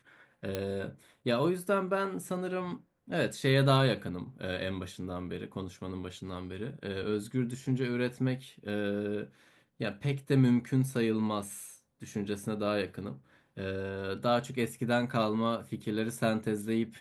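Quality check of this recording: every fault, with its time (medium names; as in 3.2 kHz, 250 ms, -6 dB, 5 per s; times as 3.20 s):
0.55 s: pop -18 dBFS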